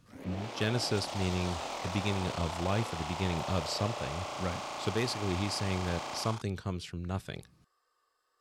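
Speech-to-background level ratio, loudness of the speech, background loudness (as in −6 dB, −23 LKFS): 3.5 dB, −35.0 LKFS, −38.5 LKFS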